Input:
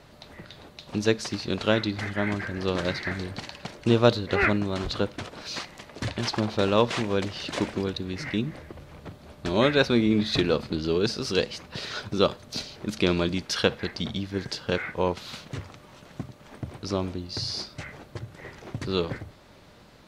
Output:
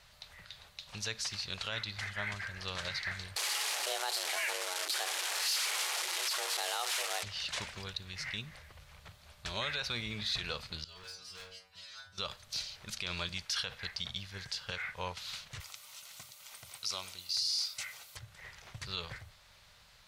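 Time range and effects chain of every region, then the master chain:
0:03.36–0:07.23: linear delta modulator 64 kbit/s, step −22 dBFS + frequency shifter +260 Hz
0:10.84–0:12.18: stiff-string resonator 90 Hz, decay 0.61 s, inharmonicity 0.002 + dynamic equaliser 740 Hz, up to +7 dB, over −53 dBFS, Q 1.3 + hard clipping −35.5 dBFS
0:15.60–0:18.17: Butterworth band-reject 1,700 Hz, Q 8 + RIAA equalisation recording
whole clip: guitar amp tone stack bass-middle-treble 10-0-10; brickwall limiter −24 dBFS

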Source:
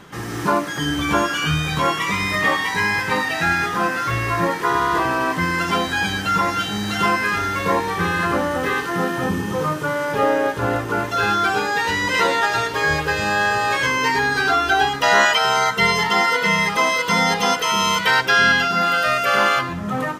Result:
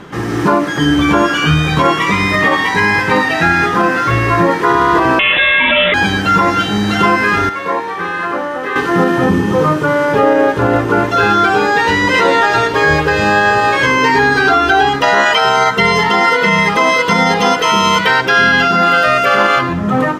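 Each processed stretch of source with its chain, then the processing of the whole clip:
0:05.19–0:05.94: spectral tilt +2.5 dB per octave + voice inversion scrambler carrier 3,700 Hz + envelope flattener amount 70%
0:07.49–0:08.76: high-pass filter 1,200 Hz 6 dB per octave + high-shelf EQ 2,200 Hz −10.5 dB
whole clip: low-pass filter 3,400 Hz 6 dB per octave; parametric band 330 Hz +4 dB 1.3 octaves; boost into a limiter +9.5 dB; level −1 dB

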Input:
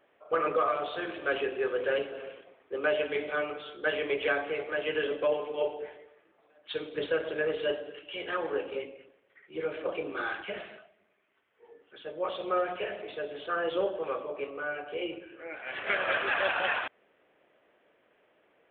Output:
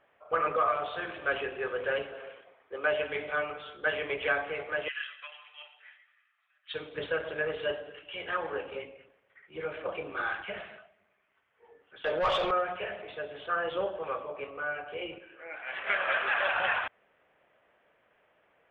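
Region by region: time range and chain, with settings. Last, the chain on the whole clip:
0:02.14–0:02.89: bass and treble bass −7 dB, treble +1 dB + notch filter 2,700 Hz, Q 20
0:04.88–0:06.74: high-pass filter 1,500 Hz 24 dB per octave + comb filter 1.6 ms, depth 33%
0:12.04–0:12.51: mid-hump overdrive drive 20 dB, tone 3,900 Hz, clips at −20.5 dBFS + envelope flattener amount 70%
0:15.18–0:16.54: parametric band 100 Hz −11 dB 1.8 octaves + hum removal 63.72 Hz, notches 29
whole clip: low-pass filter 1,500 Hz 6 dB per octave; parametric band 330 Hz −12.5 dB 1.8 octaves; level +6 dB

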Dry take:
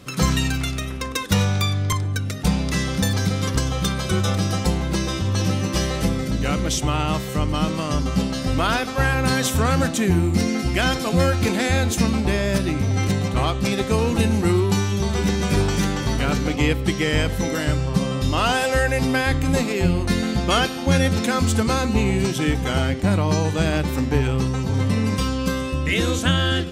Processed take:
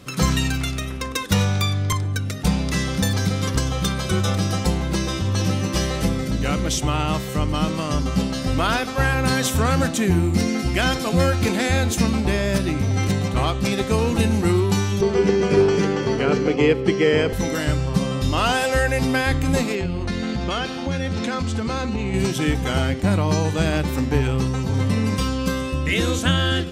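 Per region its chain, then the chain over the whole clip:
0:15.01–0:17.33: band-pass filter 120–4,900 Hz + parametric band 420 Hz +13 dB 0.43 octaves + notch filter 3,700 Hz, Q 5.9
0:19.75–0:22.14: downward compressor 5 to 1, threshold −20 dBFS + low-pass filter 5,800 Hz
whole clip: no processing

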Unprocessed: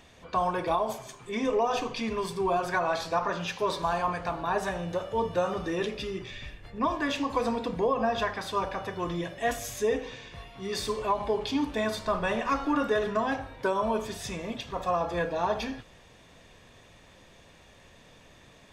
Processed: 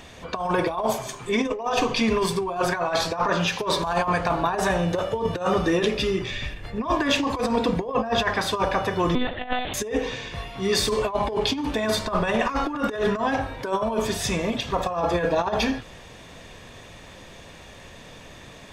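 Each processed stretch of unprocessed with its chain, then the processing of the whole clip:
0:09.15–0:09.74: comb filter 2.8 ms, depth 70% + one-pitch LPC vocoder at 8 kHz 250 Hz
whole clip: compressor whose output falls as the input rises −30 dBFS, ratio −0.5; every ending faded ahead of time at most 190 dB per second; level +8 dB

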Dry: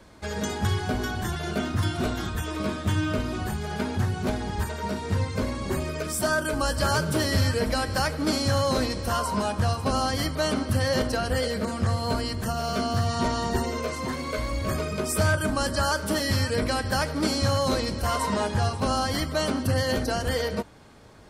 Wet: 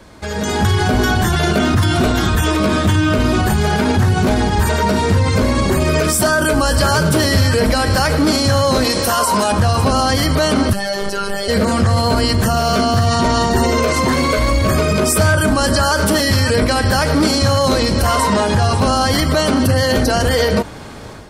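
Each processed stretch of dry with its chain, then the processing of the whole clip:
0:08.84–0:09.52: high-pass filter 280 Hz 6 dB per octave + high-shelf EQ 7,600 Hz +8 dB
0:10.73–0:11.48: comb filter 2.3 ms, depth 82% + phases set to zero 199 Hz
whole clip: brickwall limiter −25 dBFS; automatic gain control gain up to 9.5 dB; level +9 dB

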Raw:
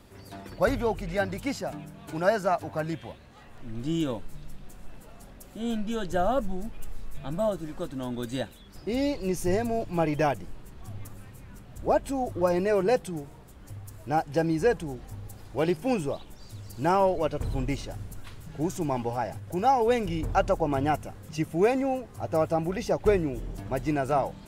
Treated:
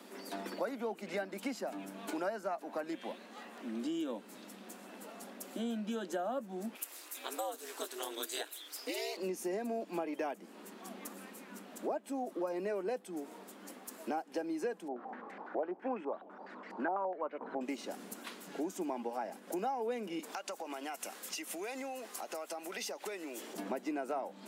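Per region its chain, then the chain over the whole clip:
0:06.75–0:09.17: spectral tilt +4 dB per octave + ring modulation 110 Hz + linear-phase brick-wall high-pass 250 Hz
0:14.88–0:17.61: low-shelf EQ 120 Hz −11.5 dB + low-pass on a step sequencer 12 Hz 700–2,000 Hz
0:20.19–0:23.54: high-pass filter 770 Hz 6 dB per octave + downward compressor 5 to 1, threshold −43 dBFS + high-shelf EQ 2,100 Hz +9.5 dB
whole clip: Butterworth high-pass 200 Hz 72 dB per octave; dynamic equaliser 5,000 Hz, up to −3 dB, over −44 dBFS, Q 0.72; downward compressor 5 to 1, threshold −39 dBFS; level +3 dB

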